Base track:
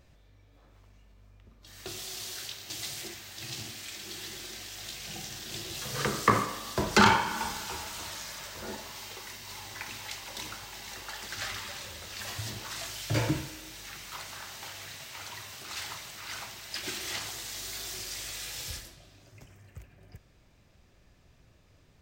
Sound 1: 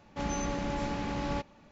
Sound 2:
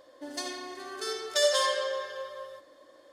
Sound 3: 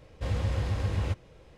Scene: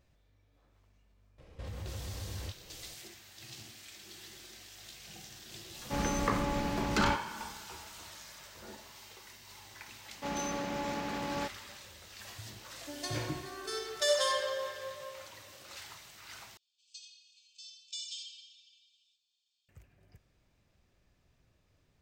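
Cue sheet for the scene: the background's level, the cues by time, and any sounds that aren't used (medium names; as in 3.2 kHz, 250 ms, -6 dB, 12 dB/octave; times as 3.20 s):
base track -9.5 dB
1.38 s: add 3 -3.5 dB + compression 4:1, threshold -36 dBFS
5.74 s: add 1
10.06 s: add 1 -0.5 dB + high-pass 280 Hz 6 dB/octave
12.66 s: add 2 -4 dB
16.57 s: replace with 2 -12 dB + brick-wall FIR band-pass 2.3–8.4 kHz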